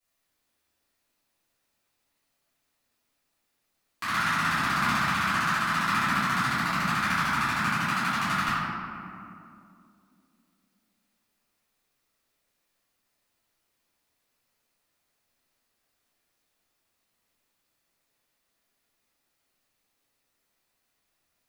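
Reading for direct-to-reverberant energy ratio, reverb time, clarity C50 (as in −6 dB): −16.5 dB, 2.5 s, −3.0 dB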